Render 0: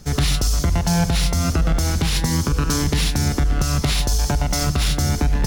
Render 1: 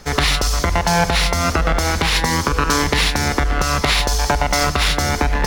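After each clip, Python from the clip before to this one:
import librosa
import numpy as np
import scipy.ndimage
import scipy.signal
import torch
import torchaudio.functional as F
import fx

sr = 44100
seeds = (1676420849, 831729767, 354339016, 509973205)

y = fx.graphic_eq(x, sr, hz=(125, 500, 1000, 2000, 4000), db=(-6, 6, 9, 9, 4))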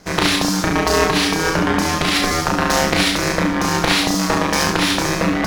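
y = fx.cheby_harmonics(x, sr, harmonics=(7,), levels_db=(-25,), full_scale_db=-2.0)
y = y * np.sin(2.0 * np.pi * 240.0 * np.arange(len(y)) / sr)
y = fx.room_early_taps(y, sr, ms=(34, 70), db=(-3.5, -4.5))
y = y * 10.0 ** (2.0 / 20.0)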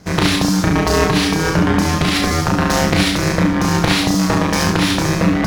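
y = fx.peak_eq(x, sr, hz=110.0, db=10.0, octaves=2.2)
y = y * 10.0 ** (-1.0 / 20.0)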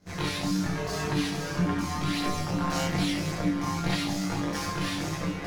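y = fx.chorus_voices(x, sr, voices=2, hz=0.89, base_ms=21, depth_ms=1.1, mix_pct=60)
y = fx.resonator_bank(y, sr, root=46, chord='major', decay_s=0.2)
y = fx.echo_feedback(y, sr, ms=189, feedback_pct=60, wet_db=-14)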